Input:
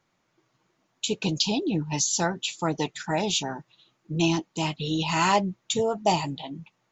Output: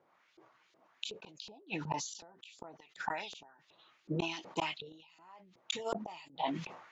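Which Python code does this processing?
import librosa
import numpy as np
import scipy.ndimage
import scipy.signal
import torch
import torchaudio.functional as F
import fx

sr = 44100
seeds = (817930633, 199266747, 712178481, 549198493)

y = fx.filter_lfo_bandpass(x, sr, shape='saw_up', hz=2.7, low_hz=450.0, high_hz=4400.0, q=1.5)
y = fx.gate_flip(y, sr, shuts_db=-30.0, range_db=-40)
y = fx.sustainer(y, sr, db_per_s=66.0)
y = y * librosa.db_to_amplitude(8.5)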